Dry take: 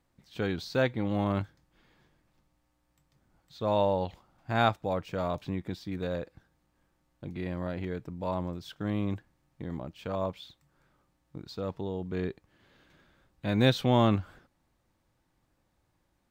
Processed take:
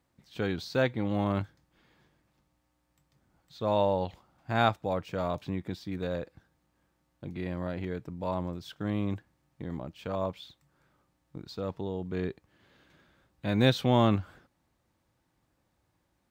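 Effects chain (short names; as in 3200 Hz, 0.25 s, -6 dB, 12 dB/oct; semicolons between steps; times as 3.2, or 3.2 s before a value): HPF 49 Hz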